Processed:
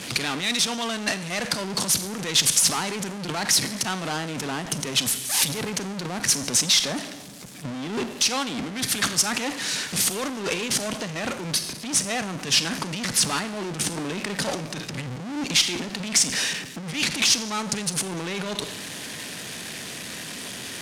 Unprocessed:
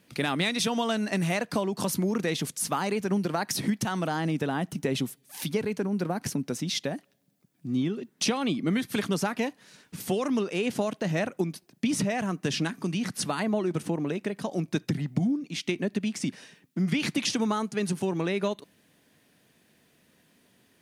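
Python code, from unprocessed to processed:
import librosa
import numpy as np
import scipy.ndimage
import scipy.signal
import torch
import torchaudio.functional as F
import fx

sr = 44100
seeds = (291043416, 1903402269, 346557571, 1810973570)

y = np.where(x < 0.0, 10.0 ** (-7.0 / 20.0) * x, x)
y = scipy.signal.sosfilt(scipy.signal.butter(2, 46.0, 'highpass', fs=sr, output='sos'), y)
y = fx.low_shelf(y, sr, hz=170.0, db=10.5)
y = fx.over_compress(y, sr, threshold_db=-36.0, ratio=-1.0)
y = fx.rev_schroeder(y, sr, rt60_s=0.72, comb_ms=31, drr_db=15.0)
y = fx.power_curve(y, sr, exponent=0.5)
y = scipy.signal.sosfilt(scipy.signal.butter(2, 8000.0, 'lowpass', fs=sr, output='sos'), y)
y = fx.tilt_eq(y, sr, slope=3.0)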